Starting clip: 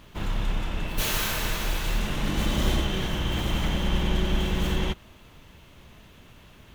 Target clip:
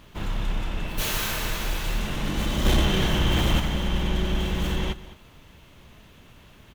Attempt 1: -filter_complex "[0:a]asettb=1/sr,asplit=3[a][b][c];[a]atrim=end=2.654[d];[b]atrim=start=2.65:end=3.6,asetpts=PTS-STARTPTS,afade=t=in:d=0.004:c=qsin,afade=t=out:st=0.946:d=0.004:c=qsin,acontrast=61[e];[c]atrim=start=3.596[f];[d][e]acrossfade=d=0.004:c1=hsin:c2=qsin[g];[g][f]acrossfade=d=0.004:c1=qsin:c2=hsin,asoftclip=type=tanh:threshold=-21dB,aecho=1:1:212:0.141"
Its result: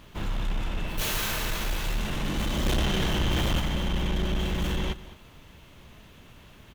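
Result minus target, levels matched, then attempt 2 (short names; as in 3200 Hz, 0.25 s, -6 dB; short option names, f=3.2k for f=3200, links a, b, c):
soft clip: distortion +10 dB
-filter_complex "[0:a]asettb=1/sr,asplit=3[a][b][c];[a]atrim=end=2.654[d];[b]atrim=start=2.65:end=3.6,asetpts=PTS-STARTPTS,afade=t=in:d=0.004:c=qsin,afade=t=out:st=0.946:d=0.004:c=qsin,acontrast=61[e];[c]atrim=start=3.596[f];[d][e]acrossfade=d=0.004:c1=hsin:c2=qsin[g];[g][f]acrossfade=d=0.004:c1=qsin:c2=hsin,asoftclip=type=tanh:threshold=-11.5dB,aecho=1:1:212:0.141"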